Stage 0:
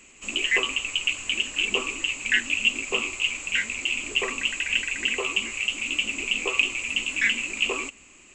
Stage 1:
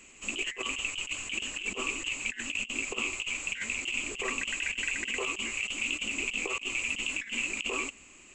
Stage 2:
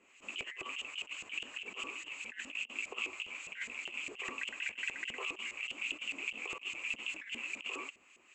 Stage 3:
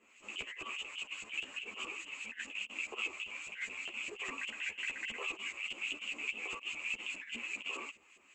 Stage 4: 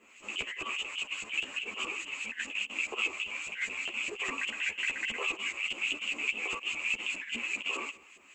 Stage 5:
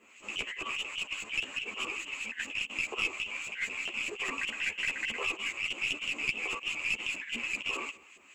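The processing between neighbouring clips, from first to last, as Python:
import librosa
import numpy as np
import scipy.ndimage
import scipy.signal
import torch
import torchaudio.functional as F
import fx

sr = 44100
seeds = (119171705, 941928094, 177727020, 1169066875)

y1 = fx.over_compress(x, sr, threshold_db=-28.0, ratio=-0.5)
y1 = y1 * librosa.db_to_amplitude(-4.5)
y2 = fx.filter_lfo_bandpass(y1, sr, shape='saw_up', hz=4.9, low_hz=470.0, high_hz=3500.0, q=0.81)
y2 = y2 * librosa.db_to_amplitude(-4.0)
y3 = fx.ensemble(y2, sr)
y3 = y3 * librosa.db_to_amplitude(3.0)
y4 = y3 + 10.0 ** (-22.0 / 20.0) * np.pad(y3, (int(179 * sr / 1000.0), 0))[:len(y3)]
y4 = y4 * librosa.db_to_amplitude(6.5)
y5 = fx.tracing_dist(y4, sr, depth_ms=0.025)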